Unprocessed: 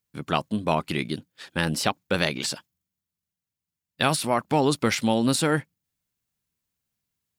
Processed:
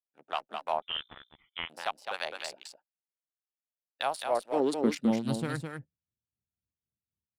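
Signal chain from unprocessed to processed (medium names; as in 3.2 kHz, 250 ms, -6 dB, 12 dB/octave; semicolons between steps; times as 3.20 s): local Wiener filter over 41 samples; high-pass sweep 750 Hz -> 70 Hz, 4.12–5.67 s; Chebyshev shaper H 8 -44 dB, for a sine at -3.5 dBFS; harmonic tremolo 3.9 Hz, depth 70%, crossover 1 kHz; delay 210 ms -5.5 dB; 0.82–1.70 s: frequency inversion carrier 3.8 kHz; trim -7.5 dB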